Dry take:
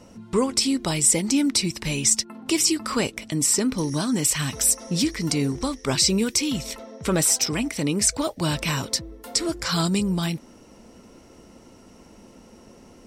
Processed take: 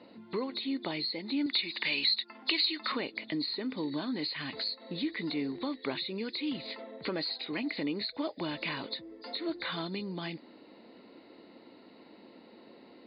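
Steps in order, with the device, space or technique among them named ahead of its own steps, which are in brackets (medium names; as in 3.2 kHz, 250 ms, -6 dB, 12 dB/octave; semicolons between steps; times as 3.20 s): hearing aid with frequency lowering (knee-point frequency compression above 3.4 kHz 4:1; compression 4:1, threshold -26 dBFS, peak gain reduction 13 dB; cabinet simulation 270–5300 Hz, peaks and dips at 300 Hz +5 dB, 1.3 kHz -4 dB, 2 kHz +5 dB, 3.8 kHz -8 dB); 1.46–2.92 s: tilt shelf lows -9 dB, about 700 Hz; trim -4 dB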